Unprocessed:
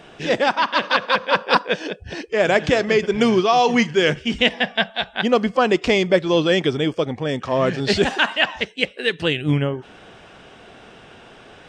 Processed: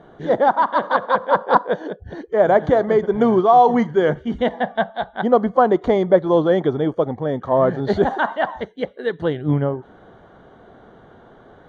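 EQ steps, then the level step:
dynamic equaliser 800 Hz, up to +7 dB, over −32 dBFS, Q 1.2
moving average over 17 samples
0.0 dB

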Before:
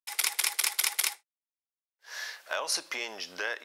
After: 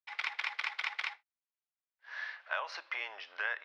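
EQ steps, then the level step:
band-pass filter 660–2,100 Hz
high-frequency loss of the air 260 metres
spectral tilt +4 dB per octave
0.0 dB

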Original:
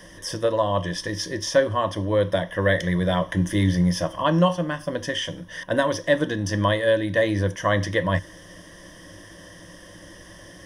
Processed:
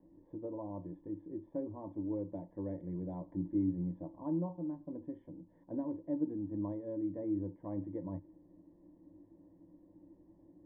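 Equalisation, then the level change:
formant resonators in series u
−6.0 dB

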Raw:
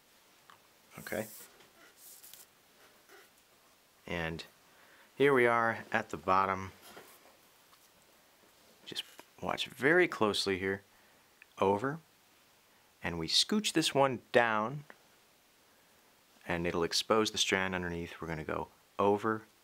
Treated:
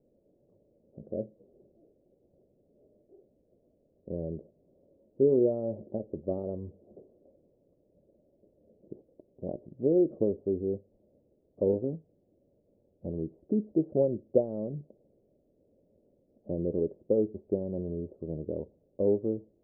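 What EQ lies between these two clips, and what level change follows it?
Chebyshev low-pass filter 590 Hz, order 5
+4.5 dB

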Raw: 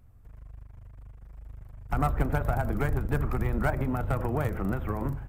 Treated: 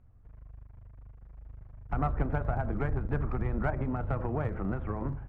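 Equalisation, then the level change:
Bessel low-pass filter 1,900 Hz, order 2
−3.0 dB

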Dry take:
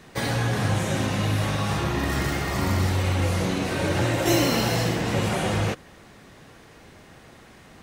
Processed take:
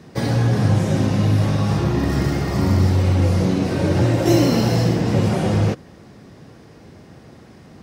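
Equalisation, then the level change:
high-pass filter 80 Hz
tilt shelving filter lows +7 dB, about 670 Hz
parametric band 5,100 Hz +7.5 dB 0.45 octaves
+2.5 dB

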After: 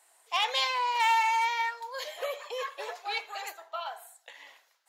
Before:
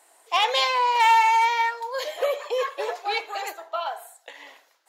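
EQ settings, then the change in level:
high-pass filter 970 Hz 6 dB per octave
−4.5 dB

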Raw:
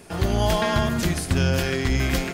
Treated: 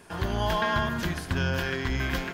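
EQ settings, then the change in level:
dynamic equaliser 8,700 Hz, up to −8 dB, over −49 dBFS, Q 1.3
thirty-one-band graphic EQ 1,000 Hz +9 dB, 1,600 Hz +9 dB, 3,150 Hz +4 dB
−7.0 dB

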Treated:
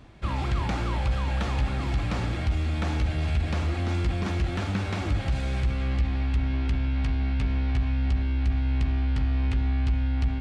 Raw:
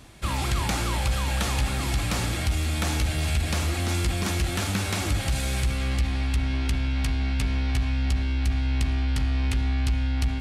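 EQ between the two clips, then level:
head-to-tape spacing loss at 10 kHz 23 dB
0.0 dB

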